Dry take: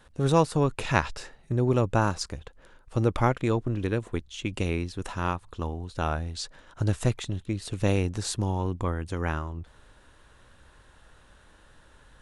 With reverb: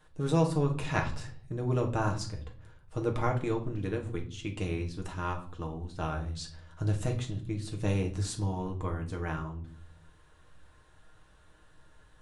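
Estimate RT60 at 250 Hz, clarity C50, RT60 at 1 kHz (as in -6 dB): 0.90 s, 11.5 dB, 0.45 s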